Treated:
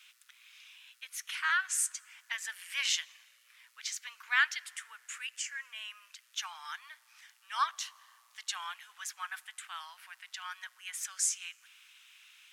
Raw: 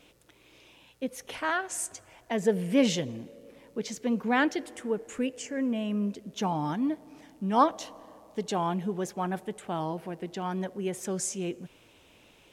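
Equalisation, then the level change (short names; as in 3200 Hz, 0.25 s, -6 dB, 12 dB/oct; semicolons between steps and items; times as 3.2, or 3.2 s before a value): steep high-pass 1300 Hz 36 dB/oct; +3.0 dB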